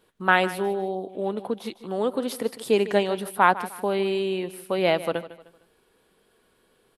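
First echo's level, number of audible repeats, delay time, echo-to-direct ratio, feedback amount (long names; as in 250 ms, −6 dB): −15.5 dB, 3, 153 ms, −15.0 dB, 34%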